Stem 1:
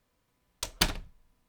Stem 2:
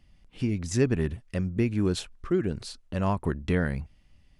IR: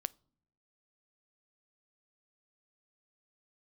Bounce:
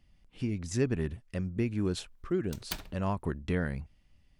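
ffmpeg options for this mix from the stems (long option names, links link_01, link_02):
-filter_complex "[0:a]equalizer=frequency=15000:width=1.5:gain=12,adelay=1900,volume=-4dB[link_01];[1:a]volume=-5dB,asplit=2[link_02][link_03];[link_03]apad=whole_len=149214[link_04];[link_01][link_04]sidechaincompress=threshold=-35dB:ratio=10:attack=12:release=1430[link_05];[link_05][link_02]amix=inputs=2:normalize=0"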